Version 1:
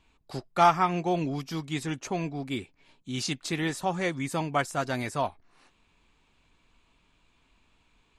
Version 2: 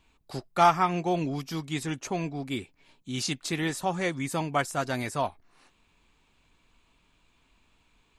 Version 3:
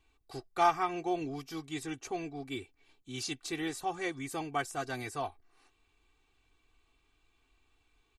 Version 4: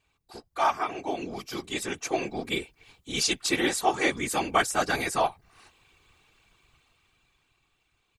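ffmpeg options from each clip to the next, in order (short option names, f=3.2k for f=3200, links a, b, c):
-af "highshelf=f=10k:g=6.5"
-af "aecho=1:1:2.6:0.77,volume=-8.5dB"
-af "afftfilt=real='hypot(re,im)*cos(2*PI*random(0))':imag='hypot(re,im)*sin(2*PI*random(1))':win_size=512:overlap=0.75,dynaudnorm=f=250:g=13:m=11dB,lowshelf=f=420:g=-8,volume=8dB"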